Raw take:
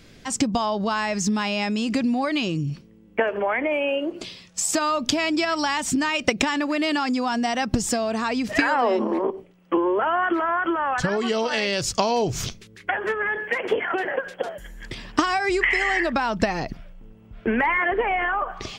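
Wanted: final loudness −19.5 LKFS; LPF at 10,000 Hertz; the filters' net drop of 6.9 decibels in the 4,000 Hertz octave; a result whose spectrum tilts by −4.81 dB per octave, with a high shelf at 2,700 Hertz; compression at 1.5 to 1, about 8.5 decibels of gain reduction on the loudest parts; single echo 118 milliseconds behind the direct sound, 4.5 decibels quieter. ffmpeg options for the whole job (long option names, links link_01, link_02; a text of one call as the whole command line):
ffmpeg -i in.wav -af "lowpass=10000,highshelf=frequency=2700:gain=-7,equalizer=frequency=4000:width_type=o:gain=-3.5,acompressor=threshold=-42dB:ratio=1.5,aecho=1:1:118:0.596,volume=11.5dB" out.wav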